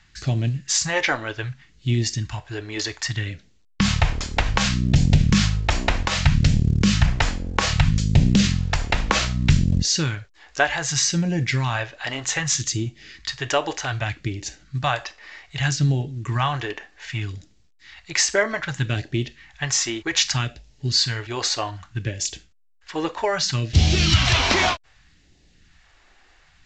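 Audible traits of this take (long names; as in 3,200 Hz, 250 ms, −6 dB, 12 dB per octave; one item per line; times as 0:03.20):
phaser sweep stages 2, 0.64 Hz, lowest notch 130–1,200 Hz
A-law companding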